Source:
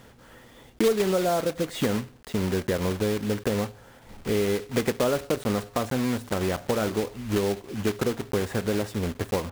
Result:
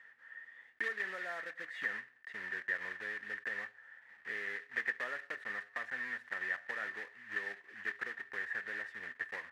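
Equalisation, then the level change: band-pass filter 1.8 kHz, Q 20; +11.0 dB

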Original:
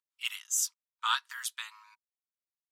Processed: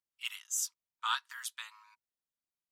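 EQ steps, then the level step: bass shelf 500 Hz +8 dB; -4.5 dB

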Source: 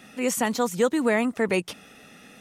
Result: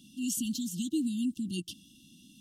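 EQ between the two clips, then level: brick-wall FIR band-stop 350–2700 Hz; -4.5 dB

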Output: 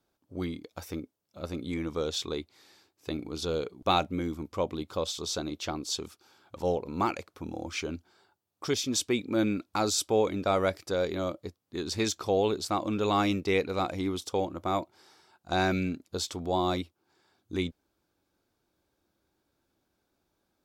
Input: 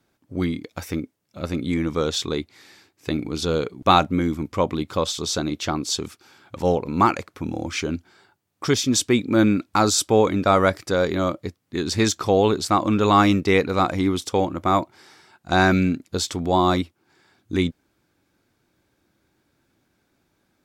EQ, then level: dynamic bell 1.1 kHz, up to -5 dB, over -32 dBFS, Q 1.6; dynamic bell 2.3 kHz, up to +6 dB, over -39 dBFS, Q 2.3; ten-band graphic EQ 125 Hz -7 dB, 250 Hz -4 dB, 2 kHz -8 dB, 8 kHz -3 dB; -5.5 dB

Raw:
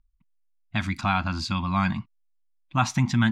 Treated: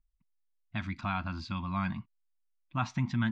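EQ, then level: distance through air 150 m; band-stop 800 Hz, Q 12; -8.0 dB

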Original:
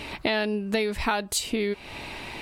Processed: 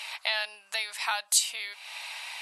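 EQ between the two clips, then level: inverse Chebyshev high-pass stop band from 370 Hz, stop band 40 dB; brick-wall FIR low-pass 12 kHz; treble shelf 3.1 kHz +12 dB; -5.0 dB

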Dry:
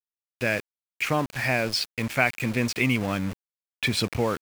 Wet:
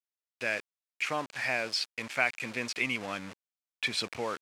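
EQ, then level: high-pass 700 Hz 6 dB/octave; low-pass 8.3 kHz 12 dB/octave; -4.0 dB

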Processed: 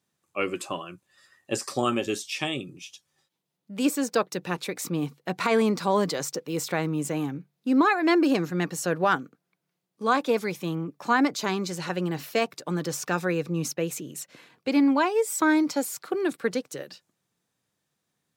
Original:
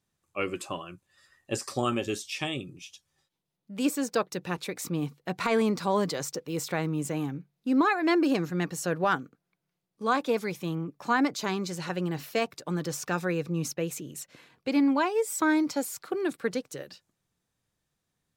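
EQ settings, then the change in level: high-pass 140 Hz; +3.0 dB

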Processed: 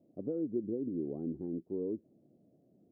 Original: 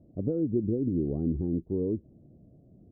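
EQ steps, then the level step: high-pass 250 Hz 12 dB/octave; -5.0 dB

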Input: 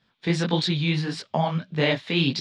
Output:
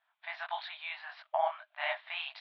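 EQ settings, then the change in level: Gaussian low-pass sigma 3.1 samples; brick-wall FIR high-pass 610 Hz; distance through air 85 m; -3.0 dB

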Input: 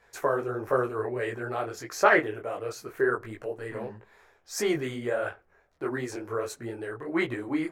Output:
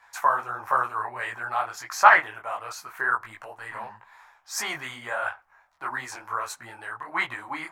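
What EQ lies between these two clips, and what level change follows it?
resonant low shelf 620 Hz -13.5 dB, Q 3; +3.5 dB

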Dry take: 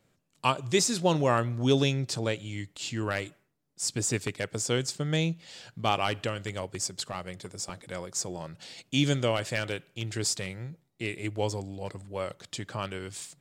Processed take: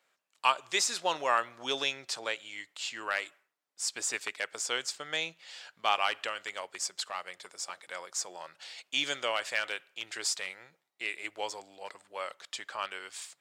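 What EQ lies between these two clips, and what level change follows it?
high-pass 1 kHz 12 dB/octave; treble shelf 3.9 kHz -8.5 dB; +4.0 dB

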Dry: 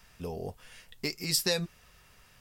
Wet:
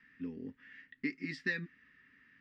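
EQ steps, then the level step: two resonant band-passes 700 Hz, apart 2.8 oct; distance through air 150 m; +8.0 dB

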